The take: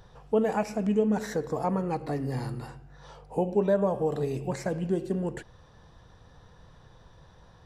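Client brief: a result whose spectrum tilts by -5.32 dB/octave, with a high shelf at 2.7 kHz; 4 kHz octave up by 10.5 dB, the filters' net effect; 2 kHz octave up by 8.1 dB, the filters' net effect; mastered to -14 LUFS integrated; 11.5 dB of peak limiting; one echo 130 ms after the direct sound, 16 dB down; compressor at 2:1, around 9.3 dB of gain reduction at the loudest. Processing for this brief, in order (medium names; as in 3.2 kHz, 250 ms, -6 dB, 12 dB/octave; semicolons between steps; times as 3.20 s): peaking EQ 2 kHz +7 dB; treble shelf 2.7 kHz +5.5 dB; peaking EQ 4 kHz +6.5 dB; compression 2:1, threshold -36 dBFS; peak limiter -31 dBFS; delay 130 ms -16 dB; trim +26 dB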